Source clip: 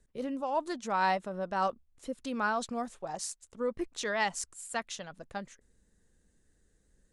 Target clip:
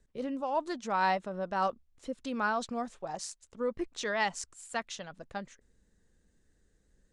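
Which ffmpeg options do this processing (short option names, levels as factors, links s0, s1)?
-af "lowpass=7200"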